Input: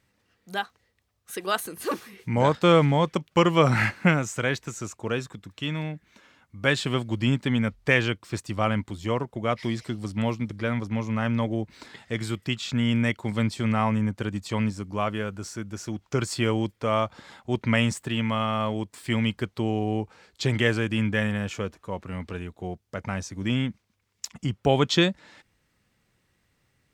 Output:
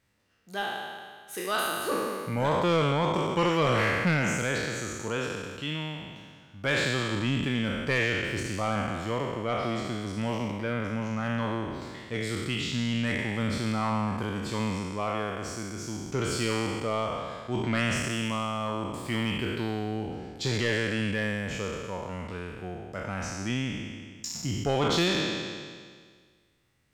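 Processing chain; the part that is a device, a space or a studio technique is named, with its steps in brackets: spectral sustain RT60 1.77 s; 10.51–11.06 s: peaking EQ 5.4 kHz -4.5 dB 1.1 oct; saturation between pre-emphasis and de-emphasis (treble shelf 6.2 kHz +6.5 dB; saturation -13 dBFS, distortion -15 dB; treble shelf 6.2 kHz -6.5 dB); trim -5 dB

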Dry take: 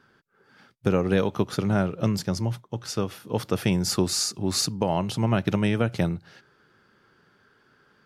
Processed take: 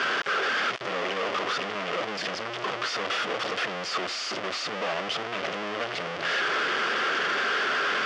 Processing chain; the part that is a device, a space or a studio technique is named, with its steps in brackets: treble shelf 2.4 kHz -2.5 dB; home computer beeper (one-bit comparator; cabinet simulation 620–4200 Hz, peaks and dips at 890 Hz -9 dB, 1.6 kHz -3 dB, 2.4 kHz -3 dB, 4 kHz -9 dB); trim +6 dB

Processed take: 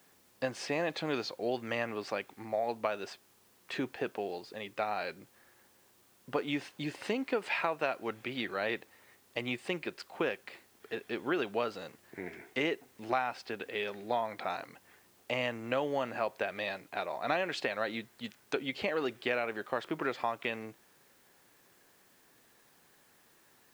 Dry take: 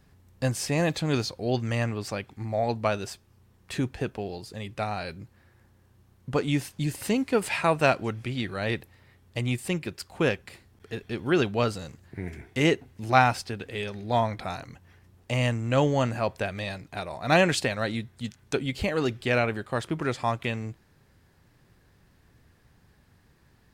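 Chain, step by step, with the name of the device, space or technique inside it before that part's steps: baby monitor (band-pass 350–3500 Hz; compression, threshold -28 dBFS, peak gain reduction 13.5 dB; white noise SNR 30 dB)

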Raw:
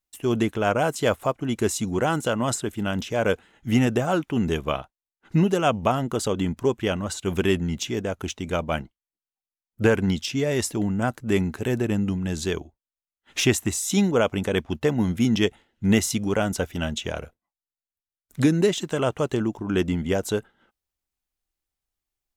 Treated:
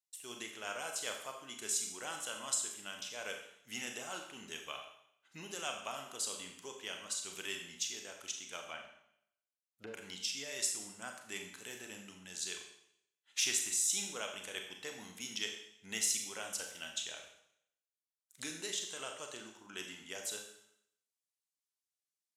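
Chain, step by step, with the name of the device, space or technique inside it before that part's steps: 8.70–9.94 s: low-pass that closes with the level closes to 460 Hz, closed at -16 dBFS; piezo pickup straight into a mixer (low-pass 8.5 kHz 12 dB/octave; differentiator); Schroeder reverb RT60 0.72 s, combs from 29 ms, DRR 3 dB; trim -3 dB

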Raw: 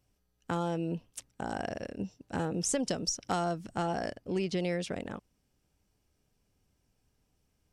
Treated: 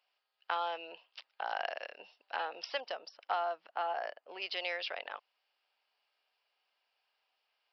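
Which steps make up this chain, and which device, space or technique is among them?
2.80–4.42 s: low-pass 1.2 kHz 6 dB/octave; musical greeting card (resampled via 11.025 kHz; high-pass 700 Hz 24 dB/octave; peaking EQ 2.8 kHz +5 dB 0.4 oct); trim +3 dB

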